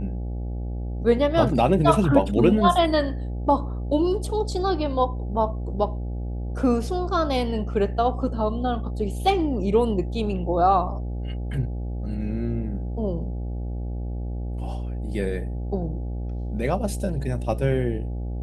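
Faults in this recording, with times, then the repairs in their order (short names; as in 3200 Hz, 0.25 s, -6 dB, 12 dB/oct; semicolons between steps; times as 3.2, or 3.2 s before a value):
buzz 60 Hz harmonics 14 -29 dBFS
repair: de-hum 60 Hz, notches 14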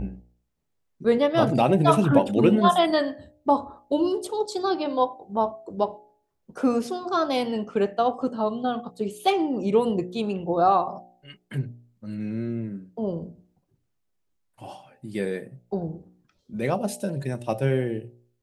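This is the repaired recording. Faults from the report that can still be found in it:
none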